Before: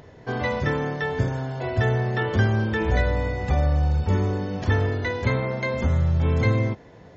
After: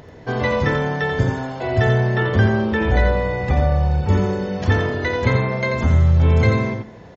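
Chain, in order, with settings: 2.14–4.09 s: distance through air 89 m; delay 87 ms -6 dB; on a send at -17 dB: reverberation RT60 1.0 s, pre-delay 13 ms; on the sum: trim +4.5 dB

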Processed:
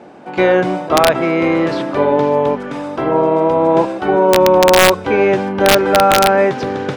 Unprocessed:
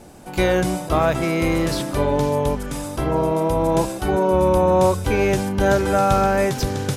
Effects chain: band-pass 250–2400 Hz; integer overflow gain 8.5 dB; trim +7.5 dB

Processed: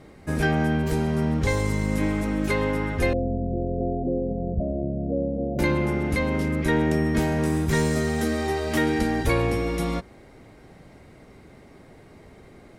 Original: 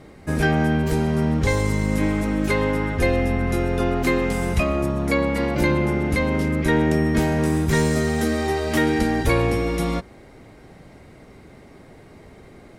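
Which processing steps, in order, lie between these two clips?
3.13–5.59 s: rippled Chebyshev low-pass 730 Hz, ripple 3 dB; trim -3 dB

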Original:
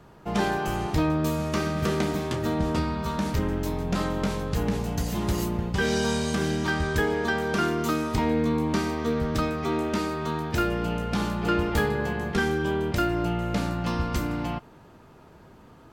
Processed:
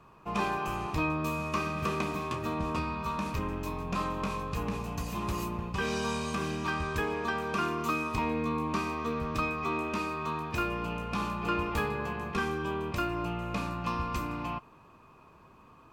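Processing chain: small resonant body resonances 1.1/2.5 kHz, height 17 dB, ringing for 30 ms; trim -8 dB

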